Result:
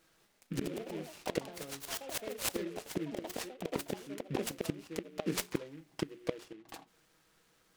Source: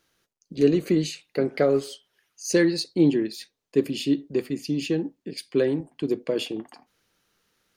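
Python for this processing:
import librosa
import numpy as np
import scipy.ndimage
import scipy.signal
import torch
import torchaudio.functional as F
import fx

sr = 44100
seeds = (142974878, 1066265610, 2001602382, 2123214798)

y = fx.hum_notches(x, sr, base_hz=60, count=6)
y = y + 0.66 * np.pad(y, (int(6.2 * sr / 1000.0), 0))[:len(y)]
y = fx.gate_flip(y, sr, shuts_db=-20.0, range_db=-25)
y = fx.echo_pitch(y, sr, ms=203, semitones=4, count=3, db_per_echo=-3.0)
y = fx.noise_mod_delay(y, sr, seeds[0], noise_hz=2000.0, depth_ms=0.066)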